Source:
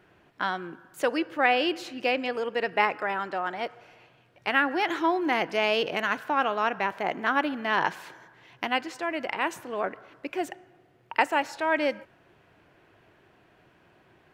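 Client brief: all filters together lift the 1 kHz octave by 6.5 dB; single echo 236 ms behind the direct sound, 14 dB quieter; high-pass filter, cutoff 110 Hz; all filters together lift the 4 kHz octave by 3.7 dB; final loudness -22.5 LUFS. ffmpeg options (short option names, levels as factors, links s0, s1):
-af "highpass=110,equalizer=f=1000:t=o:g=8,equalizer=f=4000:t=o:g=5,aecho=1:1:236:0.2,volume=1.06"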